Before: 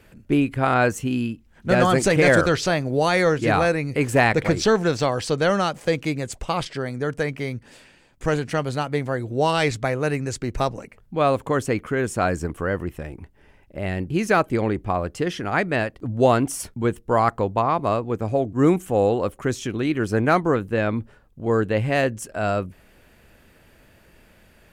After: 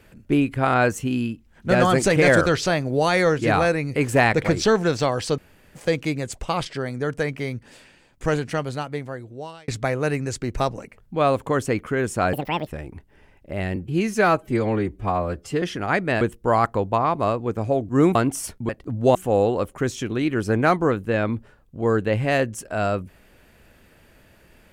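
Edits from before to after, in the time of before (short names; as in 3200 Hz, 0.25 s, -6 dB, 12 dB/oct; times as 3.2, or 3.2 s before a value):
5.38–5.75 room tone
8.35–9.68 fade out
12.33–12.93 speed 176%
14.02–15.26 stretch 1.5×
15.85–16.31 swap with 16.85–18.79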